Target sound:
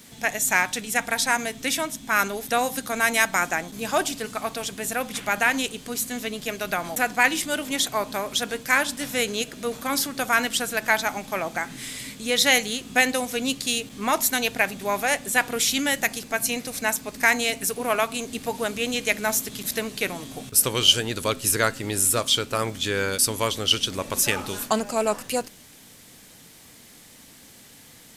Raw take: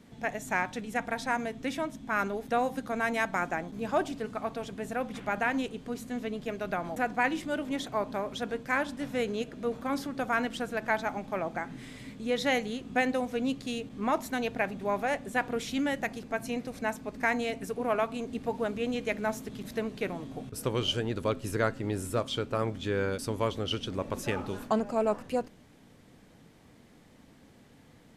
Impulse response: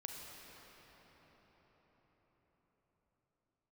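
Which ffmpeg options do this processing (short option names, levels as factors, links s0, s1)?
-af "crystalizer=i=9:c=0,volume=1.19"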